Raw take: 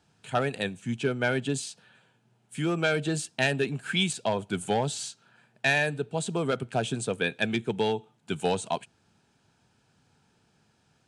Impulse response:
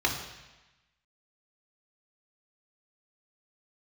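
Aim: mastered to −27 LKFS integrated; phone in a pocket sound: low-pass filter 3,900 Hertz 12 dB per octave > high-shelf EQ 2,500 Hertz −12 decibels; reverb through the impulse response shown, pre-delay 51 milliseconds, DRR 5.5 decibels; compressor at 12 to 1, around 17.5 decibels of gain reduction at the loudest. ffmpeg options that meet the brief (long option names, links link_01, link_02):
-filter_complex "[0:a]acompressor=threshold=-39dB:ratio=12,asplit=2[link_01][link_02];[1:a]atrim=start_sample=2205,adelay=51[link_03];[link_02][link_03]afir=irnorm=-1:irlink=0,volume=-17dB[link_04];[link_01][link_04]amix=inputs=2:normalize=0,lowpass=3900,highshelf=frequency=2500:gain=-12,volume=18dB"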